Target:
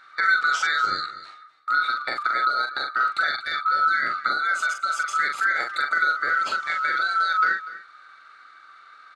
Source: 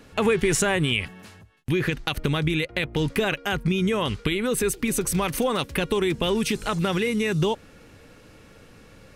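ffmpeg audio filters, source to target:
ffmpeg -i in.wav -filter_complex "[0:a]afftfilt=real='real(if(lt(b,272),68*(eq(floor(b/68),0)*2+eq(floor(b/68),1)*0+eq(floor(b/68),2)*3+eq(floor(b/68),3)*1)+mod(b,68),b),0)':imag='imag(if(lt(b,272),68*(eq(floor(b/68),0)*2+eq(floor(b/68),1)*0+eq(floor(b/68),2)*3+eq(floor(b/68),3)*1)+mod(b,68),b),0)':win_size=2048:overlap=0.75,bandpass=frequency=1700:width_type=q:width=0.63:csg=0,asetrate=35002,aresample=44100,atempo=1.25992,asplit=2[link_01][link_02];[link_02]adelay=42,volume=-5dB[link_03];[link_01][link_03]amix=inputs=2:normalize=0,asplit=2[link_04][link_05];[link_05]aecho=0:1:242:0.158[link_06];[link_04][link_06]amix=inputs=2:normalize=0" out.wav

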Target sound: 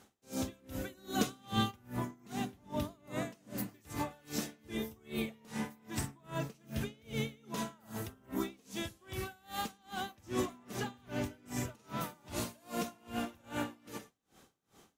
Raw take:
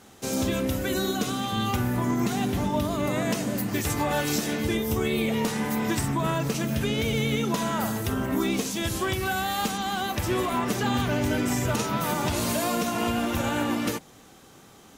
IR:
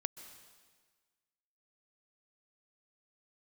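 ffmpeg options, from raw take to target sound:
-filter_complex "[0:a]asplit=3[link_01][link_02][link_03];[link_01]afade=type=out:start_time=0.97:duration=0.02[link_04];[link_02]acontrast=47,afade=type=in:start_time=0.97:duration=0.02,afade=type=out:start_time=1.7:duration=0.02[link_05];[link_03]afade=type=in:start_time=1.7:duration=0.02[link_06];[link_04][link_05][link_06]amix=inputs=3:normalize=0,asettb=1/sr,asplit=3[link_07][link_08][link_09];[link_07]atrim=end=10.184[link_10];[link_08]atrim=start=10.18:end=10.63,asetpts=PTS-STARTPTS,afade=type=in:duration=0.004:curve=qsin,afade=type=out:start_time=0.446:duration=0.004:curve=qsin,equalizer=frequency=100:width_type=o:width=0.67:gain=4,equalizer=frequency=250:width_type=o:width=0.67:gain=8,equalizer=frequency=6300:width_type=o:width=0.67:gain=8[link_11];[link_09]atrim=start=10.626[link_12];[link_10][link_11]acrossfade=duration=0.004:curve1=hsin:curve2=qsin[link_13];[link_13][link_12]acrossfade=duration=0.004:curve1=qsin:curve2=hsin[link_14];[1:a]atrim=start_sample=2205,atrim=end_sample=6615,asetrate=52920,aresample=44100[link_15];[link_14][link_15]afir=irnorm=-1:irlink=0,aeval=exprs='val(0)*pow(10,-30*(0.5-0.5*cos(2*PI*2.5*n/s))/20)':channel_layout=same,volume=-5dB"

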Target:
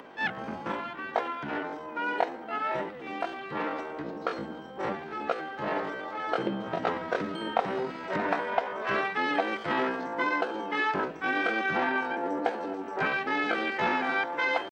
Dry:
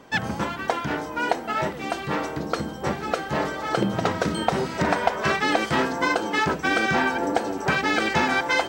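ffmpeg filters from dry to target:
ffmpeg -i in.wav -filter_complex "[0:a]acrossover=split=210 3700:gain=0.178 1 0.1[link_01][link_02][link_03];[link_01][link_02][link_03]amix=inputs=3:normalize=0,acompressor=mode=upward:threshold=-35dB:ratio=2.5,atempo=0.59,volume=-5dB" out.wav

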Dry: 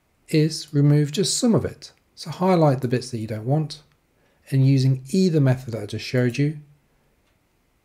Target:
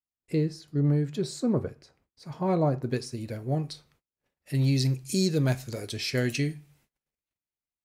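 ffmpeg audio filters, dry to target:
ffmpeg -i in.wav -af "agate=range=-32dB:threshold=-58dB:ratio=16:detection=peak,asetnsamples=nb_out_samples=441:pad=0,asendcmd='2.92 highshelf g 2;4.55 highshelf g 10.5',highshelf=frequency=2200:gain=-11.5,volume=-7dB" out.wav

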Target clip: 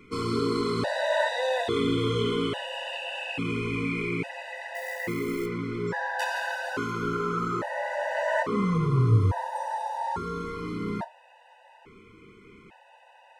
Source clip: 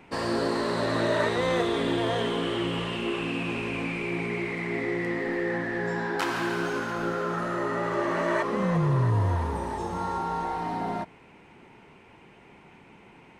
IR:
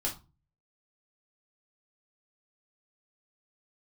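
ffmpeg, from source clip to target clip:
-filter_complex "[0:a]asettb=1/sr,asplit=3[link_01][link_02][link_03];[link_01]atrim=end=4.754[link_04];[link_02]atrim=start=4.75:end=5.46,asetpts=PTS-STARTPTS,afade=type=in:duration=0.004:curve=qsin,afade=type=out:start_time=0.706:duration=0.004:curve=qsin,acrusher=bits=4:mode=log:mix=0:aa=0.000001[link_05];[link_03]atrim=start=5.456[link_06];[link_04][link_05]acrossfade=duration=0.004:curve1=hsin:curve2=qsin[link_07];[link_07][link_06]acrossfade=duration=0.004:curve1=qsin:curve2=hsin,asplit=2[link_08][link_09];[1:a]atrim=start_sample=2205[link_10];[link_09][link_10]afir=irnorm=-1:irlink=0,volume=-10dB[link_11];[link_08][link_11]amix=inputs=2:normalize=0,afftfilt=real='re*gt(sin(2*PI*0.59*pts/sr)*(1-2*mod(floor(b*sr/1024/500),2)),0)':imag='im*gt(sin(2*PI*0.59*pts/sr)*(1-2*mod(floor(b*sr/1024/500),2)),0)':win_size=1024:overlap=0.75"

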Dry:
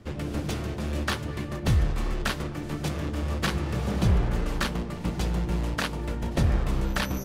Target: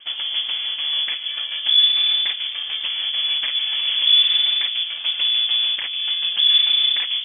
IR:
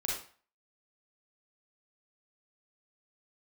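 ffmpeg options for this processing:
-filter_complex "[0:a]acrossover=split=320|1800[link_01][link_02][link_03];[link_01]equalizer=frequency=140:width_type=o:width=0.68:gain=-14.5[link_04];[link_02]alimiter=level_in=2.5dB:limit=-24dB:level=0:latency=1:release=189,volume=-2.5dB[link_05];[link_03]acompressor=threshold=-48dB:ratio=6[link_06];[link_04][link_05][link_06]amix=inputs=3:normalize=0,lowpass=frequency=3000:width_type=q:width=0.5098,lowpass=frequency=3000:width_type=q:width=0.6013,lowpass=frequency=3000:width_type=q:width=0.9,lowpass=frequency=3000:width_type=q:width=2.563,afreqshift=-3500,crystalizer=i=2:c=0,volume=5dB"

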